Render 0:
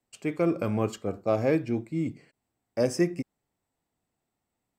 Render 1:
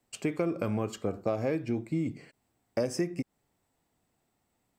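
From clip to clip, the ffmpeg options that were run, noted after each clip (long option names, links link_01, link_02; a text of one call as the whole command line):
ffmpeg -i in.wav -af "acompressor=threshold=-33dB:ratio=6,volume=6dB" out.wav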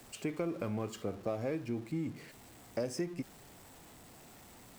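ffmpeg -i in.wav -af "aeval=exprs='val(0)+0.5*0.00708*sgn(val(0))':channel_layout=same,volume=-6.5dB" out.wav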